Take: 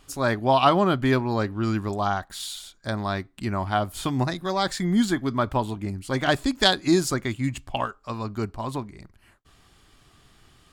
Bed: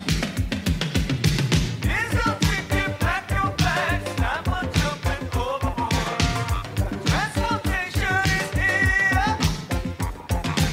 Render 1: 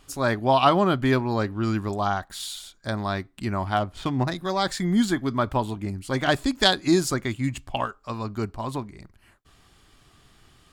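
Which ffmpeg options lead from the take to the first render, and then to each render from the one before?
ffmpeg -i in.wav -filter_complex "[0:a]asettb=1/sr,asplit=3[link_01][link_02][link_03];[link_01]atrim=end=3.764[link_04];[link_02]atrim=start=3.76:end=4.32,asetpts=PTS-STARTPTS,afade=type=in:duration=0.004:curve=qsin,afade=type=out:start_time=0.556:duration=0.004:curve=qsin,adynamicsmooth=sensitivity=4.5:basefreq=2700[link_05];[link_03]atrim=start=4.316[link_06];[link_04][link_05]acrossfade=duration=0.004:curve1=hsin:curve2=qsin[link_07];[link_07][link_06]acrossfade=duration=0.004:curve1=qsin:curve2=hsin" out.wav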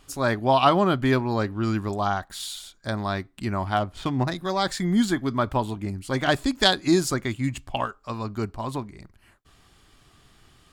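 ffmpeg -i in.wav -af anull out.wav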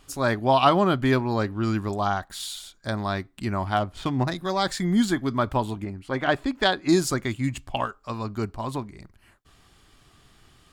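ffmpeg -i in.wav -filter_complex "[0:a]asettb=1/sr,asplit=3[link_01][link_02][link_03];[link_01]atrim=end=5.844[link_04];[link_02]atrim=start=5.84:end=6.89,asetpts=PTS-STARTPTS,afade=type=in:duration=0.004:curve=qsin,afade=type=out:start_time=1.046:duration=0.004:curve=qsin,bass=frequency=250:gain=-5,treble=frequency=4000:gain=-15[link_05];[link_03]atrim=start=6.886[link_06];[link_04][link_05]acrossfade=duration=0.004:curve1=hsin:curve2=qsin[link_07];[link_07][link_06]acrossfade=duration=0.004:curve1=qsin:curve2=hsin" out.wav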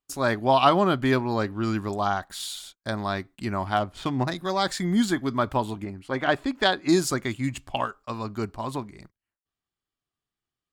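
ffmpeg -i in.wav -af "agate=range=-33dB:threshold=-45dB:ratio=16:detection=peak,lowshelf=frequency=98:gain=-7.5" out.wav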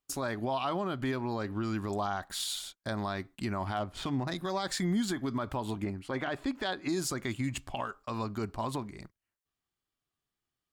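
ffmpeg -i in.wav -af "acompressor=threshold=-24dB:ratio=6,alimiter=limit=-23dB:level=0:latency=1:release=75" out.wav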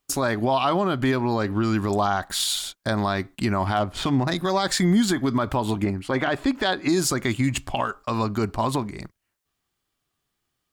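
ffmpeg -i in.wav -af "volume=10.5dB" out.wav

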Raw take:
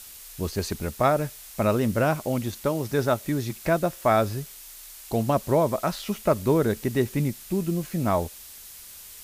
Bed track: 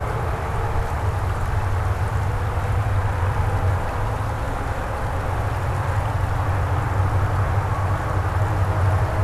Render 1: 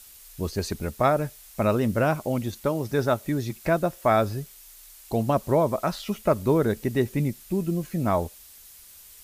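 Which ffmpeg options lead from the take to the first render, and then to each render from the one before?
ffmpeg -i in.wav -af "afftdn=noise_reduction=6:noise_floor=-44" out.wav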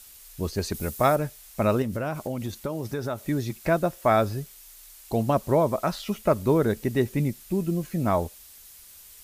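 ffmpeg -i in.wav -filter_complex "[0:a]asettb=1/sr,asplit=3[link_01][link_02][link_03];[link_01]atrim=end=0.744[link_04];[link_02]atrim=start=0.74:end=1.16,asetpts=PTS-STARTPTS,afade=type=in:duration=0.004:curve=qsin,afade=type=out:start_time=0.416:duration=0.004:curve=qsin,highshelf=frequency=6200:gain=11[link_05];[link_03]atrim=start=1.156[link_06];[link_04][link_05]acrossfade=duration=0.004:curve1=hsin:curve2=qsin[link_07];[link_07][link_06]acrossfade=duration=0.004:curve1=qsin:curve2=hsin,asettb=1/sr,asplit=3[link_08][link_09][link_10];[link_08]atrim=end=1.824[link_11];[link_09]atrim=start=1.82:end=3.27,asetpts=PTS-STARTPTS,afade=type=in:duration=0.004:curve=qsin,afade=type=out:start_time=1.446:duration=0.004:curve=qsin,acompressor=threshold=-25dB:ratio=6:attack=3.2:release=140:knee=1:detection=peak[link_12];[link_10]atrim=start=3.266[link_13];[link_11][link_12]acrossfade=duration=0.004:curve1=hsin:curve2=qsin[link_14];[link_14][link_13]acrossfade=duration=0.004:curve1=qsin:curve2=hsin" out.wav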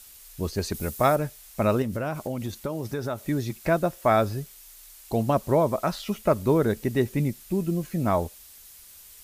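ffmpeg -i in.wav -af anull out.wav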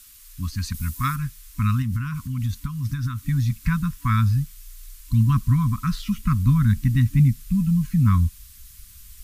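ffmpeg -i in.wav -af "afftfilt=real='re*(1-between(b*sr/4096,290,980))':imag='im*(1-between(b*sr/4096,290,980))':win_size=4096:overlap=0.75,asubboost=boost=10:cutoff=120" out.wav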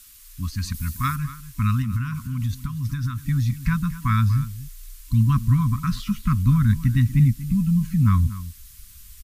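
ffmpeg -i in.wav -filter_complex "[0:a]asplit=2[link_01][link_02];[link_02]adelay=239.1,volume=-15dB,highshelf=frequency=4000:gain=-5.38[link_03];[link_01][link_03]amix=inputs=2:normalize=0" out.wav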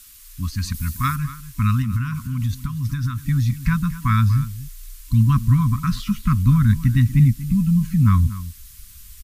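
ffmpeg -i in.wav -af "volume=2.5dB" out.wav

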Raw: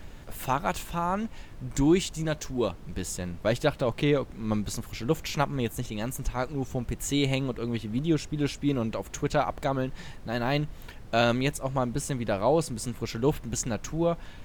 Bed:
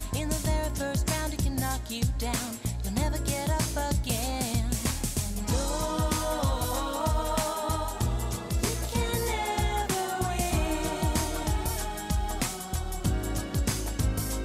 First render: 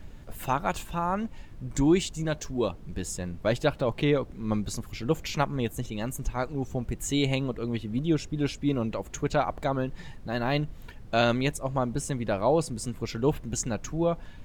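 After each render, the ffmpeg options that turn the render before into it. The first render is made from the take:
ffmpeg -i in.wav -af "afftdn=noise_reduction=6:noise_floor=-45" out.wav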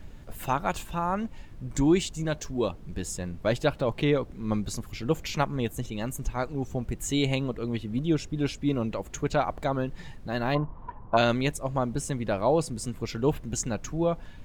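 ffmpeg -i in.wav -filter_complex "[0:a]asplit=3[link_01][link_02][link_03];[link_01]afade=type=out:start_time=10.54:duration=0.02[link_04];[link_02]lowpass=frequency=1000:width_type=q:width=10,afade=type=in:start_time=10.54:duration=0.02,afade=type=out:start_time=11.16:duration=0.02[link_05];[link_03]afade=type=in:start_time=11.16:duration=0.02[link_06];[link_04][link_05][link_06]amix=inputs=3:normalize=0" out.wav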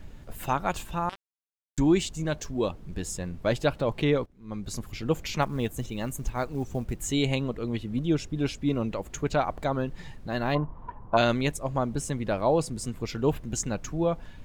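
ffmpeg -i in.wav -filter_complex "[0:a]asettb=1/sr,asplit=3[link_01][link_02][link_03];[link_01]atrim=end=1.094[link_04];[link_02]atrim=start=1.09:end=1.78,asetpts=PTS-STARTPTS,afade=type=in:duration=0.004:curve=qsin,afade=type=out:start_time=0.686:duration=0.004:curve=qsin,acrusher=bits=2:mix=0:aa=0.5[link_05];[link_03]atrim=start=1.776[link_06];[link_04][link_05]acrossfade=duration=0.004:curve1=hsin:curve2=qsin[link_07];[link_07][link_06]acrossfade=duration=0.004:curve1=qsin:curve2=hsin,asettb=1/sr,asplit=3[link_08][link_09][link_10];[link_08]atrim=end=5.424[link_11];[link_09]atrim=start=5.42:end=7.11,asetpts=PTS-STARTPTS,afade=type=in:duration=0.004:curve=qsin,afade=type=out:start_time=1.686:duration=0.004:curve=qsin,acrusher=bits=8:mode=log:mix=0:aa=0.000001[link_12];[link_10]atrim=start=7.106[link_13];[link_11][link_12]acrossfade=duration=0.004:curve1=hsin:curve2=qsin[link_14];[link_14][link_13]acrossfade=duration=0.004:curve1=qsin:curve2=hsin,asplit=2[link_15][link_16];[link_15]atrim=end=4.26,asetpts=PTS-STARTPTS,afade=type=out:start_time=4.256:duration=0.004:curve=hsin:silence=0.11885[link_17];[link_16]atrim=start=4.26,asetpts=PTS-STARTPTS,afade=type=in:duration=0.51:curve=qua:silence=0.11885[link_18];[link_17][link_18]concat=n=2:v=0:a=1" out.wav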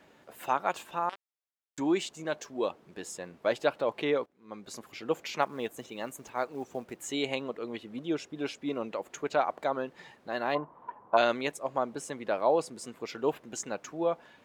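ffmpeg -i in.wav -af "highpass=410,highshelf=frequency=3700:gain=-8" out.wav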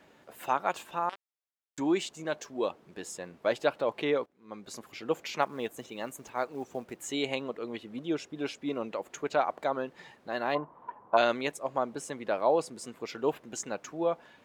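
ffmpeg -i in.wav -af anull out.wav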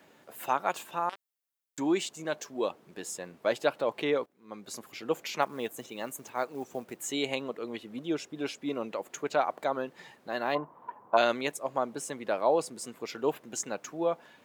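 ffmpeg -i in.wav -af "highpass=99,highshelf=frequency=9000:gain=9.5" out.wav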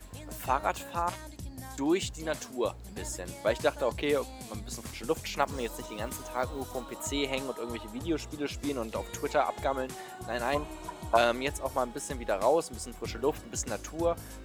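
ffmpeg -i in.wav -i bed.wav -filter_complex "[1:a]volume=-14dB[link_01];[0:a][link_01]amix=inputs=2:normalize=0" out.wav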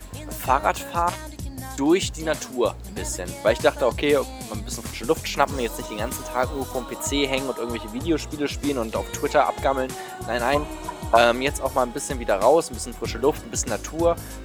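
ffmpeg -i in.wav -af "volume=8.5dB,alimiter=limit=-2dB:level=0:latency=1" out.wav

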